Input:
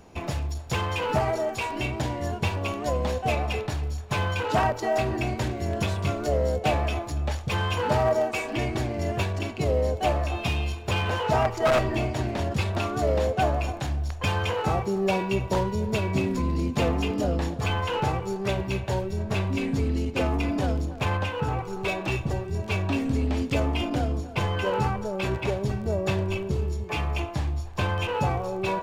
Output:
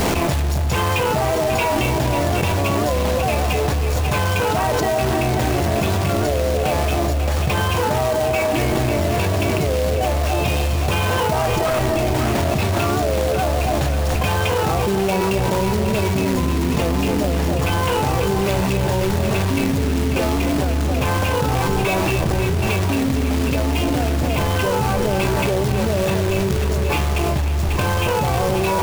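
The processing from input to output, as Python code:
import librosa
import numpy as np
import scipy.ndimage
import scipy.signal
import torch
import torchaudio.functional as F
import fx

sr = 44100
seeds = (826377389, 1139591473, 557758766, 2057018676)

y = fx.high_shelf(x, sr, hz=3600.0, db=-6.0)
y = fx.hum_notches(y, sr, base_hz=50, count=2)
y = fx.quant_companded(y, sr, bits=4)
y = fx.echo_alternate(y, sr, ms=271, hz=840.0, feedback_pct=75, wet_db=-8.0)
y = fx.env_flatten(y, sr, amount_pct=100)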